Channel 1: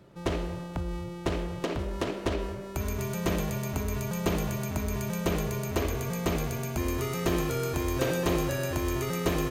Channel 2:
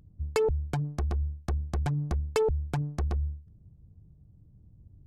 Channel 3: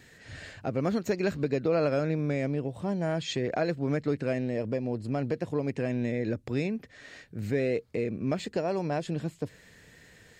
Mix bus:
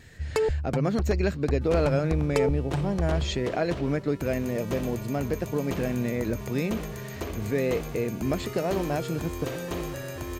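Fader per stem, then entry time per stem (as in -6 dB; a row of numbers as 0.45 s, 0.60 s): -5.5 dB, +1.0 dB, +1.5 dB; 1.45 s, 0.00 s, 0.00 s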